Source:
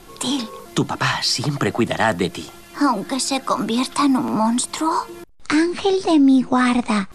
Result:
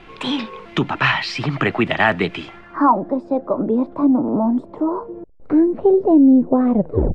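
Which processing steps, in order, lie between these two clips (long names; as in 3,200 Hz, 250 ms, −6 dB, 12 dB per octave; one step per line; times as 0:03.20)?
turntable brake at the end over 0.42 s
tape wow and flutter 21 cents
low-pass filter sweep 2,500 Hz → 530 Hz, 0:02.46–0:03.14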